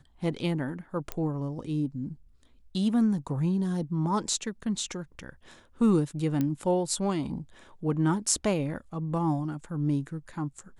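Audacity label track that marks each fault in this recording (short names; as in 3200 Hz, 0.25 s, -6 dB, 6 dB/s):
1.120000	1.120000	pop -17 dBFS
6.410000	6.410000	pop -16 dBFS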